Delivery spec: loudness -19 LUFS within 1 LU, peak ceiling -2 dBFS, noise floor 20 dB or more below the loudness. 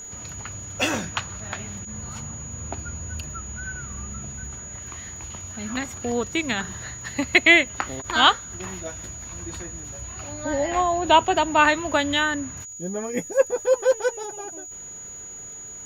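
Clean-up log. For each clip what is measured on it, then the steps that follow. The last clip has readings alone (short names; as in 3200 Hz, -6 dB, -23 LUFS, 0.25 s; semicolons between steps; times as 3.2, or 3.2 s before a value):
ticks 48/s; steady tone 6800 Hz; tone level -36 dBFS; loudness -24.0 LUFS; peak -1.5 dBFS; loudness target -19.0 LUFS
-> de-click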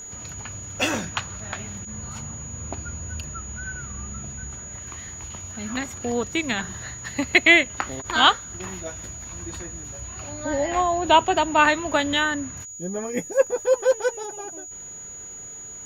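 ticks 0.13/s; steady tone 6800 Hz; tone level -36 dBFS
-> notch 6800 Hz, Q 30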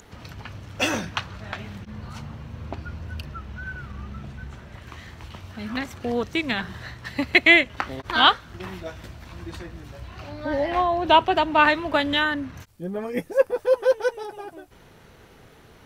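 steady tone none; loudness -21.5 LUFS; peak -1.5 dBFS; loudness target -19.0 LUFS
-> gain +2.5 dB; limiter -2 dBFS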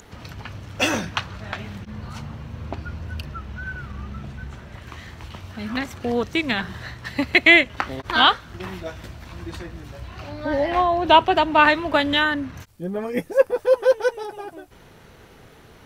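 loudness -19.5 LUFS; peak -2.0 dBFS; noise floor -49 dBFS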